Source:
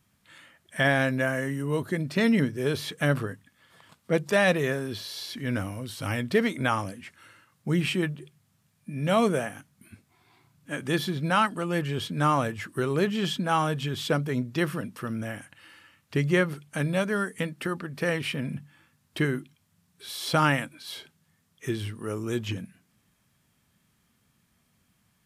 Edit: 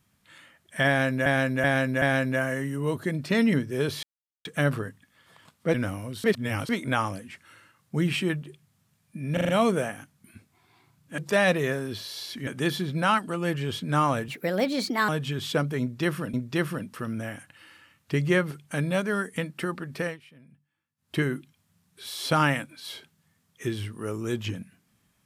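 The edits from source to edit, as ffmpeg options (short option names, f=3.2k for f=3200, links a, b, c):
-filter_complex "[0:a]asplit=19[a][b][c][d][e][f][g][h][i][j][k][l][m][n][o][p][q][r][s];[a]atrim=end=1.262[t];[b]atrim=start=0.878:end=1.262[u];[c]atrim=start=0.878:end=1.262[v];[d]atrim=start=0.878:end=2.89,asetpts=PTS-STARTPTS,afade=t=out:st=2.008:d=0.004:c=hsin,apad=pad_dur=0.42[w];[e]atrim=start=2.89:end=4.182,asetpts=PTS-STARTPTS,afade=t=in:d=0.004:c=hsin[x];[f]atrim=start=5.468:end=5.972[y];[g]atrim=start=5.968:end=6.422,asetpts=PTS-STARTPTS,areverse[z];[h]atrim=start=6.418:end=9.102[aa];[i]atrim=start=9.058:end=9.102[ab];[j]atrim=start=9.058:end=9.102[ac];[k]atrim=start=9.058:end=9.102[ad];[l]atrim=start=9.058:end=10.752[ae];[m]atrim=start=4.178:end=5.472[af];[n]atrim=start=10.748:end=12.564[ag];[o]atrim=start=12.56:end=13.64,asetpts=PTS-STARTPTS,asetrate=59094,aresample=44100,atrim=end_sample=35543,asetpts=PTS-STARTPTS[ah];[p]atrim=start=13.636:end=14.892[ai];[q]atrim=start=14.358:end=18.21,asetpts=PTS-STARTPTS,afade=t=out:st=3.642:d=0.21:silence=0.0749894[aj];[r]atrim=start=18.21:end=18.99,asetpts=PTS-STARTPTS,volume=-22.5dB[ak];[s]atrim=start=18.99,asetpts=PTS-STARTPTS,afade=t=in:d=0.21:silence=0.0749894[al];[t][u]acrossfade=d=0.004:c1=hsin:c2=hsin[am];[am][v]acrossfade=d=0.004:c1=hsin:c2=hsin[an];[w][x]concat=n=2:v=0:a=1[ao];[an][ao]acrossfade=d=0.004:c1=hsin:c2=hsin[ap];[ap][y]acrossfade=d=0.004:c1=hsin:c2=hsin[aq];[aq][z]acrossfade=d=0.004:c1=hsin:c2=hsin[ar];[ar][aa]acrossfade=d=0.004:c1=hsin:c2=hsin[as];[as][ab]acrossfade=d=0.004:c1=hsin:c2=hsin[at];[at][ac]acrossfade=d=0.004:c1=hsin:c2=hsin[au];[au][ad]acrossfade=d=0.004:c1=hsin:c2=hsin[av];[av][ae]acrossfade=d=0.004:c1=hsin:c2=hsin[aw];[aw][af]acrossfade=d=0.004:c1=hsin:c2=hsin[ax];[ax][ag]acrossfade=d=0.004:c1=hsin:c2=hsin[ay];[ay][ah]acrossfade=d=0.004:c1=hsin:c2=hsin[az];[az][ai]acrossfade=d=0.004:c1=hsin:c2=hsin[ba];[aj][ak][al]concat=n=3:v=0:a=1[bb];[ba][bb]acrossfade=d=0.004:c1=hsin:c2=hsin"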